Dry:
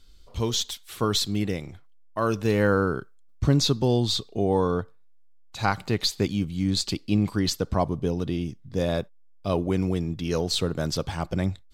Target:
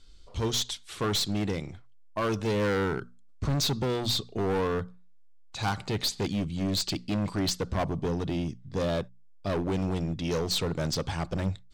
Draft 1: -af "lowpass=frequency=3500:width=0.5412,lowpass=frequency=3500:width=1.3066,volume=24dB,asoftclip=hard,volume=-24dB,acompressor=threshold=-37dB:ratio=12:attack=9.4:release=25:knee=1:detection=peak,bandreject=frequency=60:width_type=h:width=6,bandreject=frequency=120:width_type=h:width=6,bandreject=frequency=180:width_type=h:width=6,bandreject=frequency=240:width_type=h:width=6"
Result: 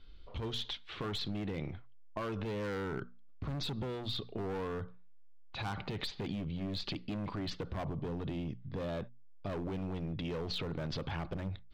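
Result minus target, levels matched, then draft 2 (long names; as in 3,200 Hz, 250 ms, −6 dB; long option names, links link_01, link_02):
8,000 Hz band −13.0 dB; downward compressor: peak gain reduction +11.5 dB
-af "lowpass=frequency=9400:width=0.5412,lowpass=frequency=9400:width=1.3066,volume=24dB,asoftclip=hard,volume=-24dB,bandreject=frequency=60:width_type=h:width=6,bandreject=frequency=120:width_type=h:width=6,bandreject=frequency=180:width_type=h:width=6,bandreject=frequency=240:width_type=h:width=6"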